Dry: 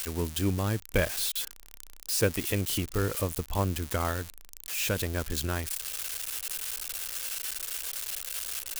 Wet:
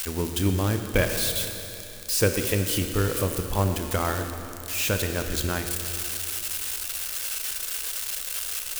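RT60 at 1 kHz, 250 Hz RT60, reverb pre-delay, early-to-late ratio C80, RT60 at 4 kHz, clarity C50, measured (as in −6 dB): 2.9 s, 2.9 s, 26 ms, 7.0 dB, 2.9 s, 6.5 dB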